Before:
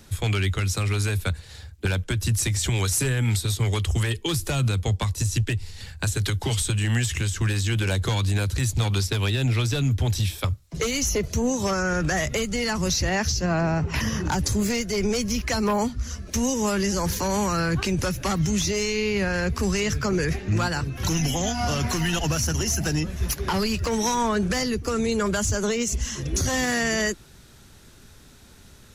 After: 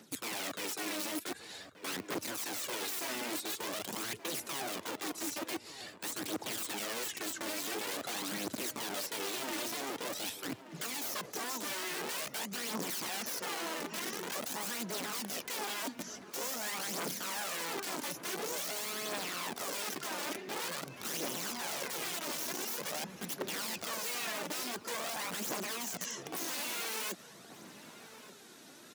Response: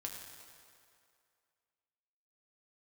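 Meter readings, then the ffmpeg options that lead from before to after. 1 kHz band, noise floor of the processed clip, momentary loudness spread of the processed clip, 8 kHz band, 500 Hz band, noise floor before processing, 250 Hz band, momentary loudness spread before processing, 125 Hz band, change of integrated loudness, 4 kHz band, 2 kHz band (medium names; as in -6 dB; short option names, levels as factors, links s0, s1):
-10.5 dB, -54 dBFS, 5 LU, -10.0 dB, -14.5 dB, -49 dBFS, -17.0 dB, 4 LU, -32.0 dB, -12.5 dB, -9.0 dB, -11.0 dB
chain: -filter_complex "[0:a]aeval=exprs='(mod(11.2*val(0)+1,2)-1)/11.2':c=same,areverse,acompressor=threshold=0.0178:ratio=6,areverse,aphaser=in_gain=1:out_gain=1:delay=3.5:decay=0.48:speed=0.47:type=triangular,highpass=f=190:w=0.5412,highpass=f=190:w=1.3066,asplit=2[s0][s1];[s1]adelay=1179,lowpass=f=1800:p=1,volume=0.224,asplit=2[s2][s3];[s3]adelay=1179,lowpass=f=1800:p=1,volume=0.49,asplit=2[s4][s5];[s5]adelay=1179,lowpass=f=1800:p=1,volume=0.49,asplit=2[s6][s7];[s7]adelay=1179,lowpass=f=1800:p=1,volume=0.49,asplit=2[s8][s9];[s9]adelay=1179,lowpass=f=1800:p=1,volume=0.49[s10];[s0][s2][s4][s6][s8][s10]amix=inputs=6:normalize=0,volume=0.708"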